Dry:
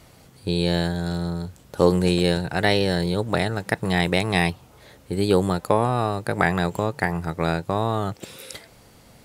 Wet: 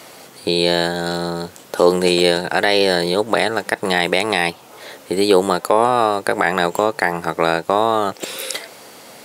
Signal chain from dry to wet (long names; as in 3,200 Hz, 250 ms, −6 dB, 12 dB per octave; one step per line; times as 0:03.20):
high-pass filter 350 Hz 12 dB per octave
in parallel at +0.5 dB: downward compressor, threshold −34 dBFS, peak gain reduction 19 dB
on the sum: boost into a limiter +8.5 dB
level −1 dB